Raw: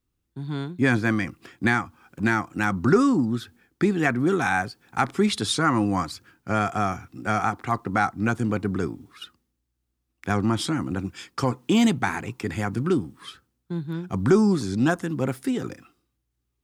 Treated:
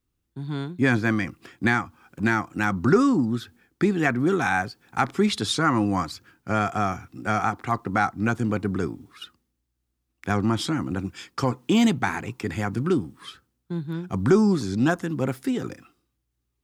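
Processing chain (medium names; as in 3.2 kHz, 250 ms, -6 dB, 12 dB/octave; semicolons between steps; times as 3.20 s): dynamic bell 9.2 kHz, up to -5 dB, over -55 dBFS, Q 3.2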